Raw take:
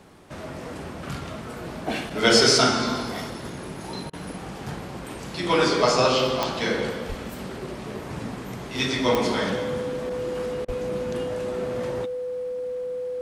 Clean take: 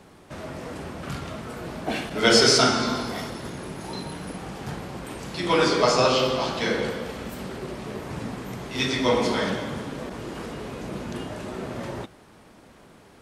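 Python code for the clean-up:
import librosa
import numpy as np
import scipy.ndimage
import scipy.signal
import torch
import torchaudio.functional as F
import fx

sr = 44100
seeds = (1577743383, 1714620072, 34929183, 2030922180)

y = fx.fix_declick_ar(x, sr, threshold=10.0)
y = fx.notch(y, sr, hz=500.0, q=30.0)
y = fx.fix_deplosive(y, sr, at_s=(7.08, 10.66))
y = fx.fix_interpolate(y, sr, at_s=(4.1, 10.65), length_ms=31.0)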